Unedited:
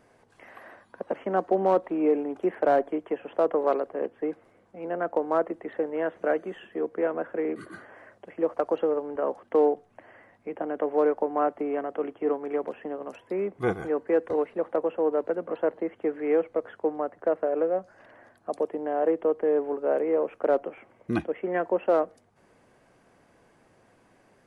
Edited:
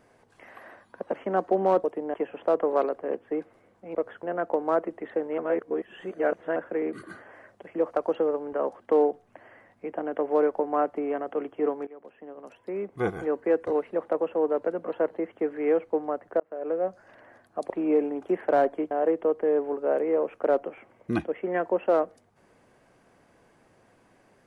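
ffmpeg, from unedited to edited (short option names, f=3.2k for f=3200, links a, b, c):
-filter_complex "[0:a]asplit=12[a][b][c][d][e][f][g][h][i][j][k][l];[a]atrim=end=1.842[m];[b]atrim=start=18.608:end=18.912[n];[c]atrim=start=3.048:end=4.862[o];[d]atrim=start=16.528:end=16.812[p];[e]atrim=start=4.858:end=6.012[q];[f]atrim=start=6.008:end=7.192,asetpts=PTS-STARTPTS,areverse[r];[g]atrim=start=7.188:end=12.5,asetpts=PTS-STARTPTS,afade=t=out:st=5.308:d=0.004:c=hsin:silence=0.0794328[s];[h]atrim=start=12.5:end=16.532,asetpts=PTS-STARTPTS,afade=t=in:d=1.37:silence=0.0794328[t];[i]atrim=start=16.808:end=17.31,asetpts=PTS-STARTPTS,afade=t=out:st=0.498:d=0.004:c=hsin[u];[j]atrim=start=17.31:end=18.612,asetpts=PTS-STARTPTS,afade=t=in:d=0.46[v];[k]atrim=start=1.838:end=3.052[w];[l]atrim=start=18.908[x];[m][n]acrossfade=d=0.004:c1=hsin:c2=hsin[y];[y][o]acrossfade=d=0.004:c1=hsin:c2=hsin[z];[z][p]acrossfade=d=0.004:c1=hsin:c2=hsin[aa];[aa][q]acrossfade=d=0.004:c1=hsin:c2=hsin[ab];[ab][r]acrossfade=d=0.004:c1=hsin:c2=hsin[ac];[s][t]concat=n=2:v=0:a=1[ad];[ac][ad]acrossfade=d=0.004:c1=hsin:c2=hsin[ae];[u][v]concat=n=2:v=0:a=1[af];[ae][af]acrossfade=d=0.004:c1=hsin:c2=hsin[ag];[ag][w]acrossfade=d=0.004:c1=hsin:c2=hsin[ah];[ah][x]acrossfade=d=0.004:c1=hsin:c2=hsin"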